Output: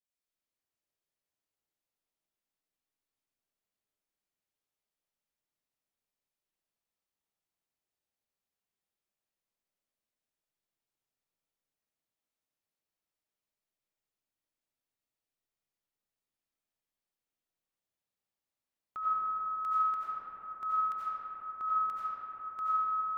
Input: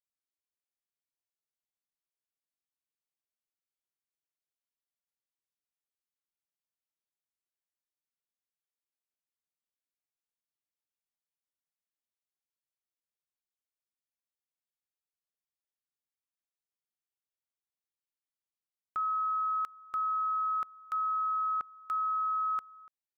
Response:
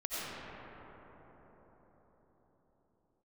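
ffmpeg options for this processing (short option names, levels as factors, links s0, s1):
-filter_complex "[0:a]equalizer=f=1400:t=o:w=0.93:g=-3[s0];[1:a]atrim=start_sample=2205[s1];[s0][s1]afir=irnorm=-1:irlink=0"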